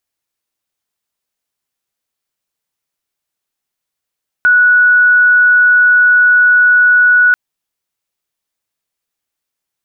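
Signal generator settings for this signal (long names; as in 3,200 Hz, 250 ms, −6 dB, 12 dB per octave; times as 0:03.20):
tone sine 1,470 Hz −5 dBFS 2.89 s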